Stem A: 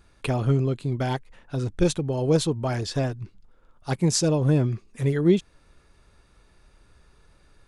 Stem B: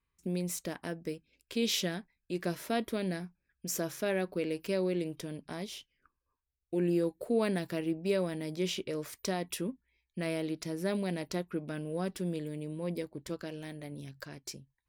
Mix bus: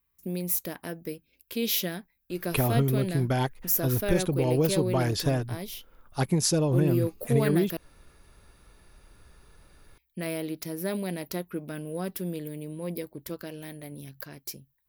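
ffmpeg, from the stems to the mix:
-filter_complex "[0:a]acompressor=threshold=0.0794:ratio=6,adelay=2300,volume=1.19[s0];[1:a]volume=1.19,asplit=3[s1][s2][s3];[s1]atrim=end=7.77,asetpts=PTS-STARTPTS,afade=t=out:st=7.766:d=0.004:c=hsin[s4];[s2]atrim=start=7.77:end=9.81,asetpts=PTS-STARTPTS,volume=0[s5];[s3]atrim=start=9.81,asetpts=PTS-STARTPTS,afade=t=in:d=0.004:c=hsin[s6];[s4][s5][s6]concat=n=3:v=0:a=1[s7];[s0][s7]amix=inputs=2:normalize=0,aexciter=amount=4.3:drive=9.1:freq=11000"

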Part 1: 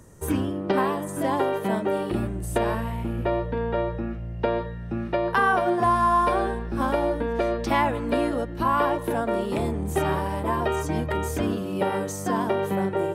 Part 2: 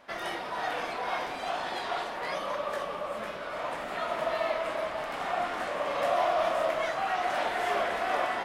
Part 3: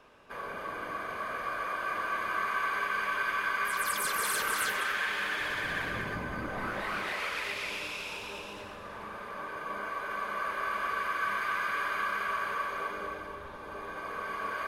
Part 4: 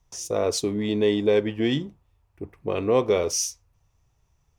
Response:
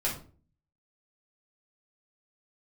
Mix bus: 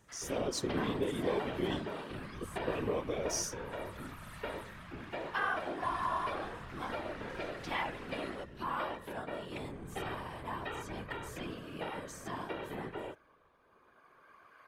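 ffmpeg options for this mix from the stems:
-filter_complex "[0:a]equalizer=f=2800:t=o:w=2.1:g=10,volume=0.266[s0];[1:a]highpass=f=1000:w=0.5412,highpass=f=1000:w=1.3066,volume=0.299[s1];[2:a]alimiter=limit=0.0668:level=0:latency=1,volume=0.119[s2];[3:a]acompressor=threshold=0.0708:ratio=6,volume=0.794[s3];[s0][s1][s2][s3]amix=inputs=4:normalize=0,afftfilt=real='hypot(re,im)*cos(2*PI*random(0))':imag='hypot(re,im)*sin(2*PI*random(1))':win_size=512:overlap=0.75"

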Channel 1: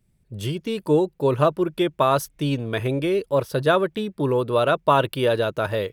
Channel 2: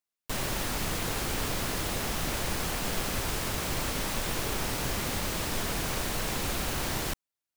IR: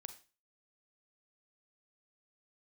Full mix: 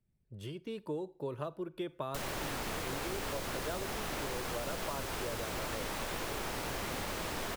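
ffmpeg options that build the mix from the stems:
-filter_complex "[0:a]volume=0.178,asplit=2[s0][s1];[s1]volume=0.668[s2];[1:a]adelay=1850,volume=1.41[s3];[2:a]atrim=start_sample=2205[s4];[s2][s4]afir=irnorm=-1:irlink=0[s5];[s0][s3][s5]amix=inputs=3:normalize=0,highshelf=f=3000:g=-7,acrossover=split=310|4000[s6][s7][s8];[s6]acompressor=threshold=0.00631:ratio=4[s9];[s7]acompressor=threshold=0.0126:ratio=4[s10];[s8]acompressor=threshold=0.00562:ratio=4[s11];[s9][s10][s11]amix=inputs=3:normalize=0"

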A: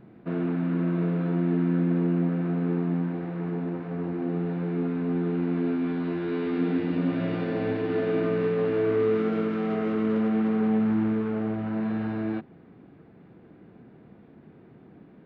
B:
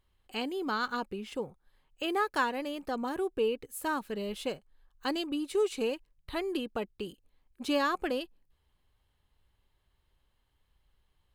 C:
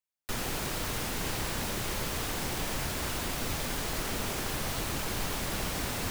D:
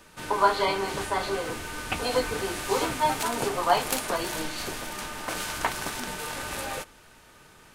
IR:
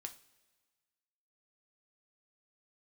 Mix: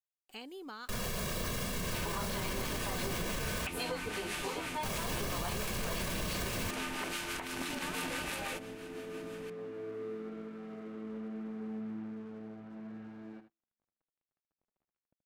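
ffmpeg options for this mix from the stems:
-filter_complex "[0:a]highpass=71,aeval=exprs='sgn(val(0))*max(abs(val(0))-0.00668,0)':c=same,adelay=1000,volume=0.119,asplit=3[s0][s1][s2];[s1]volume=0.0944[s3];[s2]volume=0.316[s4];[1:a]highshelf=f=2400:g=5.5,acompressor=threshold=0.02:ratio=4,aeval=exprs='val(0)*gte(abs(val(0)),0.00178)':c=same,volume=0.335[s5];[2:a]equalizer=f=210:w=2.3:g=11.5,aecho=1:1:1.8:0.85,adelay=600,volume=0.708,asplit=3[s6][s7][s8];[s6]atrim=end=3.67,asetpts=PTS-STARTPTS,afade=t=out:st=3.666:d=0.004:c=hsin[s9];[s7]atrim=start=3.67:end=4.83,asetpts=PTS-STARTPTS,volume=0[s10];[s8]atrim=start=4.83,asetpts=PTS-STARTPTS,afade=t=in:d=0.004:c=hsin[s11];[s9][s10][s11]concat=n=3:v=0:a=1[s12];[3:a]equalizer=f=2500:w=1.5:g=7,acompressor=threshold=0.0224:ratio=6,acrossover=split=740[s13][s14];[s13]aeval=exprs='val(0)*(1-0.5/2+0.5/2*cos(2*PI*6*n/s))':c=same[s15];[s14]aeval=exprs='val(0)*(1-0.5/2-0.5/2*cos(2*PI*6*n/s))':c=same[s16];[s15][s16]amix=inputs=2:normalize=0,adelay=1750,volume=1.06[s17];[4:a]atrim=start_sample=2205[s18];[s3][s18]afir=irnorm=-1:irlink=0[s19];[s4]aecho=0:1:78:1[s20];[s0][s5][s12][s17][s19][s20]amix=inputs=6:normalize=0,alimiter=level_in=1.33:limit=0.0631:level=0:latency=1:release=42,volume=0.75"

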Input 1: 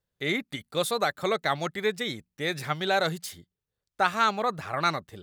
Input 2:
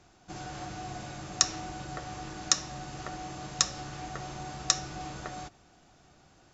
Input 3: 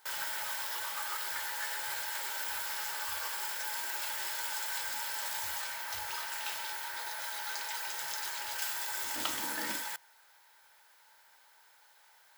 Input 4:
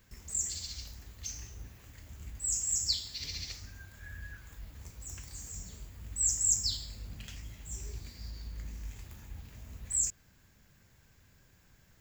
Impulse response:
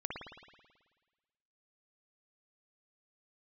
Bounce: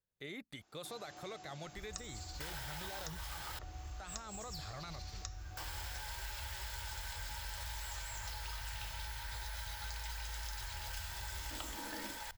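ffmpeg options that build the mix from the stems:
-filter_complex "[0:a]volume=0.299[s0];[1:a]highpass=f=390:p=1,adelay=550,volume=0.282[s1];[2:a]adelay=2350,volume=0.891,asplit=3[s2][s3][s4];[s2]atrim=end=3.59,asetpts=PTS-STARTPTS,afade=t=out:st=3.586:d=0.004:c=hsin[s5];[s3]atrim=start=3.59:end=5.57,asetpts=PTS-STARTPTS,volume=0[s6];[s4]atrim=start=5.57,asetpts=PTS-STARTPTS,afade=t=in:d=0.004:c=hsin[s7];[s5][s6][s7]concat=n=3:v=0:a=1[s8];[3:a]asoftclip=type=tanh:threshold=0.0266,adelay=1650,volume=0.355[s9];[s1][s8]amix=inputs=2:normalize=0,alimiter=limit=0.112:level=0:latency=1:release=498,volume=1[s10];[s0][s9]amix=inputs=2:normalize=0,asubboost=boost=10.5:cutoff=89,alimiter=level_in=3.35:limit=0.0631:level=0:latency=1,volume=0.299,volume=1[s11];[s10][s11]amix=inputs=2:normalize=0,acrossover=split=910|2200|6200[s12][s13][s14][s15];[s12]acompressor=threshold=0.00631:ratio=4[s16];[s13]acompressor=threshold=0.00158:ratio=4[s17];[s14]acompressor=threshold=0.00355:ratio=4[s18];[s15]acompressor=threshold=0.00282:ratio=4[s19];[s16][s17][s18][s19]amix=inputs=4:normalize=0"

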